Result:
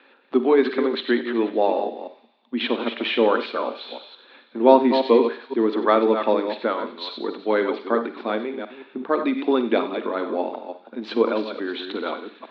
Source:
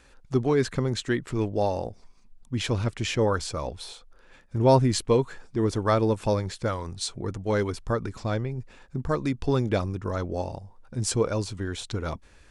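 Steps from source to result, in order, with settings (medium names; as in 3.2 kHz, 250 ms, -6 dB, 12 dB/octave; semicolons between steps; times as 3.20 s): chunks repeated in reverse 173 ms, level -8 dB; Chebyshev band-pass 230–3900 Hz, order 5; on a send: feedback echo behind a high-pass 94 ms, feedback 70%, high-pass 2.6 kHz, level -12 dB; on the sum: Schroeder reverb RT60 0.36 s, DRR 11.5 dB; trim +6 dB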